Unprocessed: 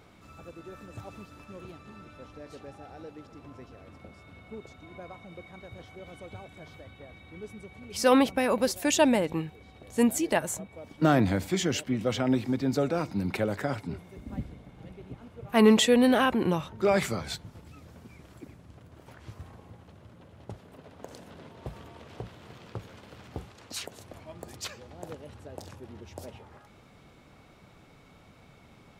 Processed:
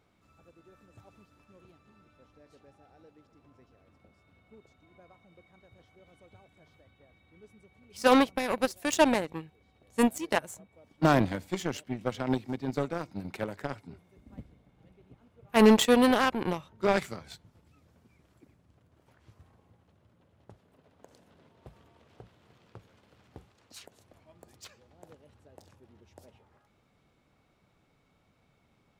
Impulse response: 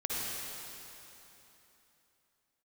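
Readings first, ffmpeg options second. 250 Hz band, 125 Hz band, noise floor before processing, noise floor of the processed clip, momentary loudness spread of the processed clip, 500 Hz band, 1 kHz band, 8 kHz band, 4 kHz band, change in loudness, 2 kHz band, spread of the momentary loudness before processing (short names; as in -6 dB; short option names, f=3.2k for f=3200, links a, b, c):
-2.5 dB, -4.0 dB, -56 dBFS, -69 dBFS, 18 LU, -2.0 dB, +0.5 dB, -5.0 dB, -2.5 dB, -0.5 dB, -0.5 dB, 23 LU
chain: -af "aeval=exprs='0.376*(cos(1*acos(clip(val(0)/0.376,-1,1)))-cos(1*PI/2))+0.0422*(cos(7*acos(clip(val(0)/0.376,-1,1)))-cos(7*PI/2))':c=same"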